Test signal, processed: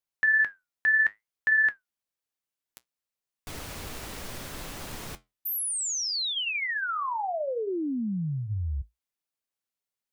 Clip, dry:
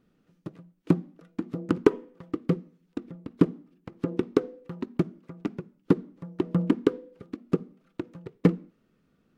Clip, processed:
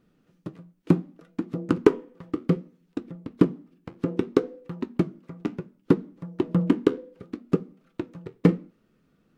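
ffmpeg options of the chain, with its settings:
-af "flanger=delay=5.7:depth=7.5:regen=-68:speed=0.65:shape=triangular,volume=6.5dB"

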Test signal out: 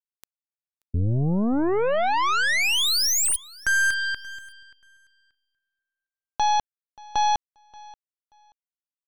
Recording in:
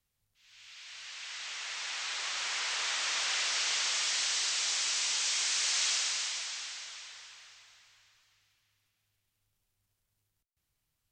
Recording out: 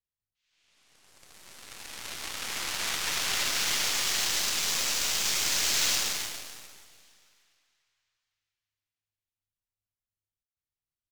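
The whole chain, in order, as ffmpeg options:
-af "aeval=exprs='0.1*(cos(1*acos(clip(val(0)/0.1,-1,1)))-cos(1*PI/2))+0.0178*(cos(4*acos(clip(val(0)/0.1,-1,1)))-cos(4*PI/2))+0.000708*(cos(6*acos(clip(val(0)/0.1,-1,1)))-cos(6*PI/2))+0.0158*(cos(7*acos(clip(val(0)/0.1,-1,1)))-cos(7*PI/2))':c=same,aecho=1:1:581|1162:0.0708|0.0149,volume=3.5dB"

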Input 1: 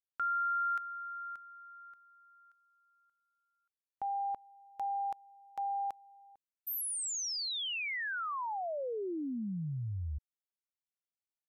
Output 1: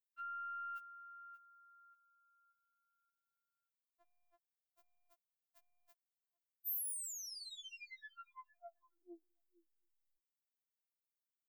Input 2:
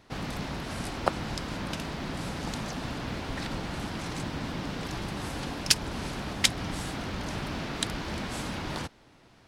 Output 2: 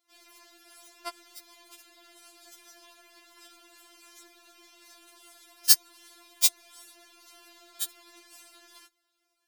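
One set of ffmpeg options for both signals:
-af "aeval=exprs='0.794*(cos(1*acos(clip(val(0)/0.794,-1,1)))-cos(1*PI/2))+0.224*(cos(2*acos(clip(val(0)/0.794,-1,1)))-cos(2*PI/2))+0.0126*(cos(5*acos(clip(val(0)/0.794,-1,1)))-cos(5*PI/2))+0.0447*(cos(6*acos(clip(val(0)/0.794,-1,1)))-cos(6*PI/2))+0.1*(cos(7*acos(clip(val(0)/0.794,-1,1)))-cos(7*PI/2))':c=same,aemphasis=mode=production:type=riaa,afftfilt=real='re*4*eq(mod(b,16),0)':imag='im*4*eq(mod(b,16),0)':win_size=2048:overlap=0.75,volume=-5dB"

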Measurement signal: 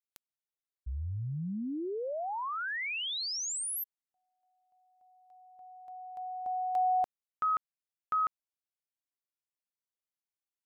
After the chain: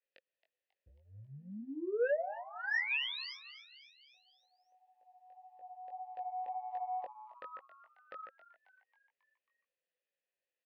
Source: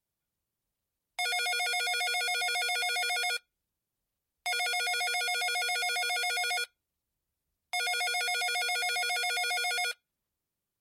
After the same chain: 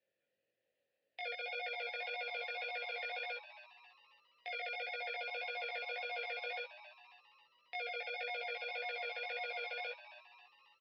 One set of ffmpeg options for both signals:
-filter_complex "[0:a]highpass=78,acompressor=threshold=-39dB:ratio=6:attack=0.92:release=396:knee=1:detection=rms,asplit=3[a][b][c];[a]bandpass=f=530:t=q:w=8,volume=0dB[d];[b]bandpass=f=1.84k:t=q:w=8,volume=-6dB[e];[c]bandpass=f=2.48k:t=q:w=8,volume=-9dB[f];[d][e][f]amix=inputs=3:normalize=0,aresample=11025,aeval=exprs='0.0119*sin(PI/2*1.58*val(0)/0.0119)':c=same,aresample=44100,flanger=delay=18:depth=3.6:speed=1.8,asplit=6[g][h][i][j][k][l];[h]adelay=271,afreqshift=120,volume=-15dB[m];[i]adelay=542,afreqshift=240,volume=-20.5dB[n];[j]adelay=813,afreqshift=360,volume=-26dB[o];[k]adelay=1084,afreqshift=480,volume=-31.5dB[p];[l]adelay=1355,afreqshift=600,volume=-37.1dB[q];[g][m][n][o][p][q]amix=inputs=6:normalize=0,volume=13dB"

